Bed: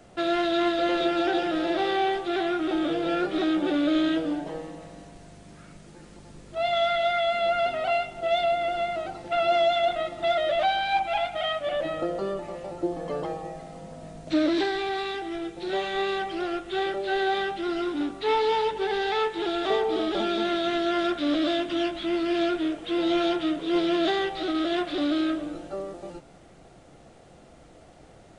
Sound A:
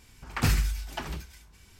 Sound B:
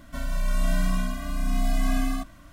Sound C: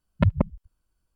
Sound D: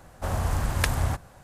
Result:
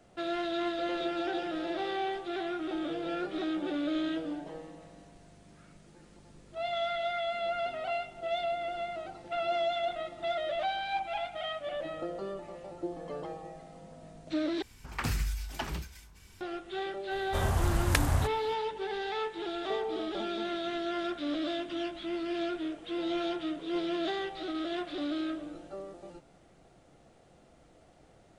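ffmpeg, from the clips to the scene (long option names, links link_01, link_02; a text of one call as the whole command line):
ffmpeg -i bed.wav -i cue0.wav -i cue1.wav -i cue2.wav -i cue3.wav -filter_complex "[0:a]volume=-8.5dB[link_01];[1:a]alimiter=limit=-20.5dB:level=0:latency=1:release=337[link_02];[link_01]asplit=2[link_03][link_04];[link_03]atrim=end=14.624[link_05];[link_02]atrim=end=1.79,asetpts=PTS-STARTPTS,volume=-0.5dB[link_06];[link_04]atrim=start=16.406[link_07];[4:a]atrim=end=1.43,asetpts=PTS-STARTPTS,volume=-2dB,afade=type=in:duration=0.004:curve=hsin,afade=type=out:start_time=1.426:duration=0.004:curve=hsin,adelay=17110[link_08];[link_05][link_06]acrossfade=duration=0.004:curve1=hsin:curve2=hsin[link_09];[link_09][link_07]acrossfade=duration=0.004:curve1=hsin:curve2=hsin[link_10];[link_10][link_08]amix=inputs=2:normalize=0" out.wav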